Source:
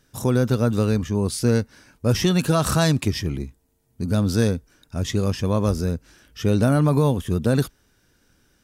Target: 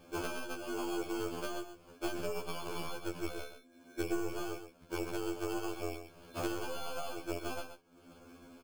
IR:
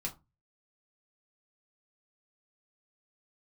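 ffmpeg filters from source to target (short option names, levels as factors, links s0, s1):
-filter_complex "[0:a]asettb=1/sr,asplit=3[s0][s1][s2];[s0]atrim=end=0.544[s3];[s1]atrim=start=0.54:end=1.21,asetpts=PTS-STARTPTS,afade=t=in:d=0.004:c=qsin,afade=t=out:st=0.666:d=0.004:c=qsin,aeval=exprs='0.0944*(abs(mod(val(0)/0.0944+3,4)-2)-1)':c=same[s4];[s2]atrim=start=1.206[s5];[s3][s4]acrossfade=d=0.004:c1=hsin:c2=qsin[s6];[s6][s5]acrossfade=d=0.004:c1=qsin:c2=hsin,asettb=1/sr,asplit=3[s7][s8][s9];[s7]atrim=end=3.224[s10];[s8]atrim=start=3.22:end=4.33,asetpts=PTS-STARTPTS,afade=t=in:d=0.004:c=qsin,afade=t=out:st=1.106:d=0.004:c=qsin,lowshelf=f=140:g=9.5[s11];[s9]atrim=start=4.326[s12];[s10][s11]acrossfade=d=0.004:c1=hsin:c2=qsin[s13];[s13][s12]acrossfade=d=0.004:c1=qsin:c2=hsin,afreqshift=240,acrusher=samples=23:mix=1:aa=0.000001,aeval=exprs='0.447*(cos(1*acos(clip(val(0)/0.447,-1,1)))-cos(1*PI/2))+0.178*(cos(2*acos(clip(val(0)/0.447,-1,1)))-cos(2*PI/2))+0.0251*(cos(6*acos(clip(val(0)/0.447,-1,1)))-cos(6*PI/2))':c=same,acompressor=threshold=0.01:ratio=16,aecho=1:1:127:0.335,afftfilt=real='re*2*eq(mod(b,4),0)':imag='im*2*eq(mod(b,4),0)':win_size=2048:overlap=0.75,volume=2.24"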